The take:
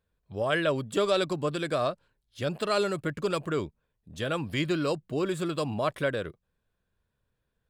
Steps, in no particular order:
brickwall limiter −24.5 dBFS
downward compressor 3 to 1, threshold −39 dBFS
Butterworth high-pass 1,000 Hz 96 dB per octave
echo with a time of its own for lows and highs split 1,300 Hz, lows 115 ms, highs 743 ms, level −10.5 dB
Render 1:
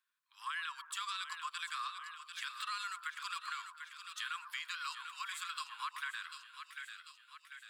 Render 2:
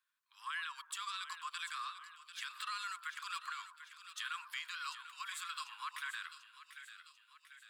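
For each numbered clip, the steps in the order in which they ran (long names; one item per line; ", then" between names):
Butterworth high-pass, then brickwall limiter, then echo with a time of its own for lows and highs, then downward compressor
brickwall limiter, then Butterworth high-pass, then downward compressor, then echo with a time of its own for lows and highs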